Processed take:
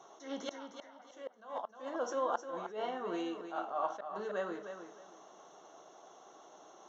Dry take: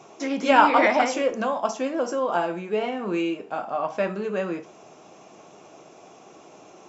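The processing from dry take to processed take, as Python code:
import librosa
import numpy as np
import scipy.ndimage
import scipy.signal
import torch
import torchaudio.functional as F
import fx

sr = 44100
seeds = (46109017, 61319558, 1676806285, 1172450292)

y = fx.gate_flip(x, sr, shuts_db=-13.0, range_db=-31)
y = scipy.signal.lfilter(np.full(18, 1.0 / 18), 1.0, y)
y = np.diff(y, prepend=0.0)
y = fx.echo_feedback(y, sr, ms=308, feedback_pct=23, wet_db=-9)
y = fx.attack_slew(y, sr, db_per_s=140.0)
y = y * 10.0 ** (13.5 / 20.0)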